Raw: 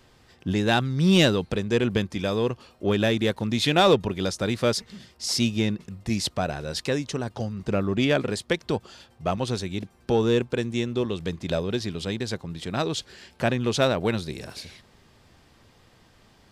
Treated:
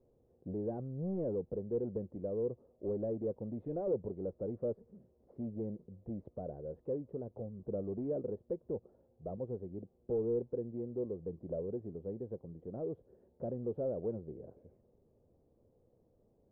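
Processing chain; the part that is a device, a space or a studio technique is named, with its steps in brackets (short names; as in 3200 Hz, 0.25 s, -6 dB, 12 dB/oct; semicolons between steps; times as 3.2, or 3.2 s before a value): overdriven synthesiser ladder filter (soft clip -20.5 dBFS, distortion -11 dB; ladder low-pass 580 Hz, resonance 55%); gain -4.5 dB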